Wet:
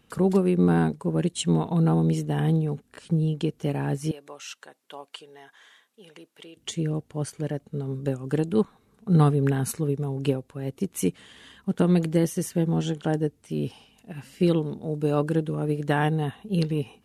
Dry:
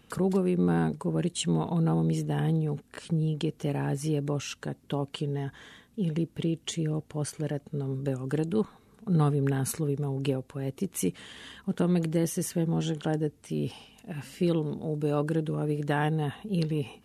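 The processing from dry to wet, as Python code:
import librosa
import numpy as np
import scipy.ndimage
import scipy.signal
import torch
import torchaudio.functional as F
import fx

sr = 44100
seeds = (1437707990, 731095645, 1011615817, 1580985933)

y = fx.highpass(x, sr, hz=730.0, slope=12, at=(4.11, 6.57))
y = fx.upward_expand(y, sr, threshold_db=-40.0, expansion=1.5)
y = y * 10.0 ** (6.0 / 20.0)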